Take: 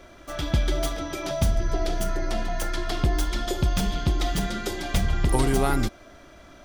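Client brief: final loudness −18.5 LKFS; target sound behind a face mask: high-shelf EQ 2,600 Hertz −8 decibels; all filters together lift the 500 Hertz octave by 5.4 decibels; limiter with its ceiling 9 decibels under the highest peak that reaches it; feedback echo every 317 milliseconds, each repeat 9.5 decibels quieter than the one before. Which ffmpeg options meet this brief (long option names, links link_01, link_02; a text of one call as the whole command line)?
ffmpeg -i in.wav -af "equalizer=frequency=500:width_type=o:gain=8.5,alimiter=limit=-14dB:level=0:latency=1,highshelf=frequency=2600:gain=-8,aecho=1:1:317|634|951|1268:0.335|0.111|0.0365|0.012,volume=8dB" out.wav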